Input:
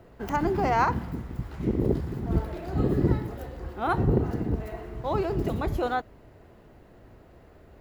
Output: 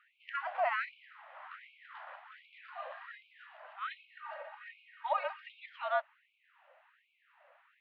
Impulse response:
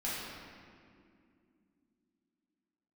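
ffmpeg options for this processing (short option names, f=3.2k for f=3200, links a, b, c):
-filter_complex "[0:a]asettb=1/sr,asplit=3[a][b][c];[a]atrim=end=1.344[d];[b]atrim=start=1.34:end=2.16,asetpts=PTS-STARTPTS,afade=t=in:d=0.004:c=qsin,afade=t=out:st=0.816:d=0.004:c=qsin,equalizer=f=1.3k:w=1.1:g=6.5[e];[c]atrim=start=2.156[f];[d][e]acrossfade=d=0.004:c1=hsin:c2=qsin[g];[g][f]acrossfade=d=0.004:c1=qsin:c2=hsin,asettb=1/sr,asplit=3[h][i][j];[h]atrim=end=3.864[k];[i]atrim=start=3.86:end=5.47,asetpts=PTS-STARTPTS,afade=t=in:d=0.004:c=qsin,afade=t=out:st=1.606:d=0.004:c=qsin,aecho=1:1:3.1:0.85,atrim=end_sample=71001[l];[j]atrim=start=5.466[m];[k][l]acrossfade=d=0.004:c1=hsin:c2=qsin[n];[n][m]acrossfade=d=0.004:c1=qsin:c2=hsin,highpass=f=220:t=q:w=0.5412,highpass=f=220:t=q:w=1.307,lowpass=f=3.2k:t=q:w=0.5176,lowpass=f=3.2k:t=q:w=0.7071,lowpass=f=3.2k:t=q:w=1.932,afreqshift=-74,asubboost=boost=5.5:cutoff=240,afftfilt=real='re*gte(b*sr/1024,510*pow(2200/510,0.5+0.5*sin(2*PI*1.3*pts/sr)))':imag='im*gte(b*sr/1024,510*pow(2200/510,0.5+0.5*sin(2*PI*1.3*pts/sr)))':win_size=1024:overlap=0.75"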